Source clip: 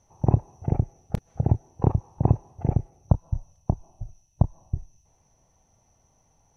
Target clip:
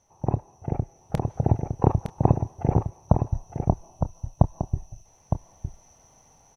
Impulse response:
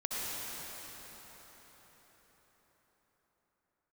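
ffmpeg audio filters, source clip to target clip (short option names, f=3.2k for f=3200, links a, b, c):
-filter_complex "[0:a]lowshelf=f=250:g=-7.5,asplit=2[a][b];[b]aecho=0:1:911:0.422[c];[a][c]amix=inputs=2:normalize=0,dynaudnorm=f=230:g=9:m=10dB"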